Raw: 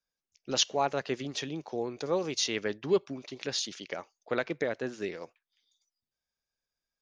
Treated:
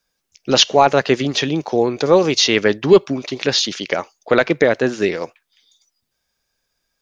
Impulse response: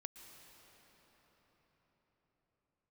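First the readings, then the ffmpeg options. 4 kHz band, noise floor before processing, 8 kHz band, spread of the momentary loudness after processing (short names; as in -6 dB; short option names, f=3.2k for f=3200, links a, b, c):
+15.0 dB, under -85 dBFS, +11.0 dB, 11 LU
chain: -filter_complex "[0:a]apsyclip=18.5dB,acrossover=split=6000[a][b];[b]acompressor=threshold=-38dB:ratio=4:attack=1:release=60[c];[a][c]amix=inputs=2:normalize=0,volume=-1.5dB"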